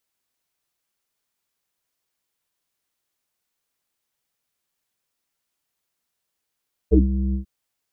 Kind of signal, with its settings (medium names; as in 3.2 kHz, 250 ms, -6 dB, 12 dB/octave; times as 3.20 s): synth note square C2 24 dB/octave, low-pass 260 Hz, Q 9, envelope 1 oct, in 0.09 s, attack 28 ms, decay 0.14 s, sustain -9 dB, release 0.11 s, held 0.43 s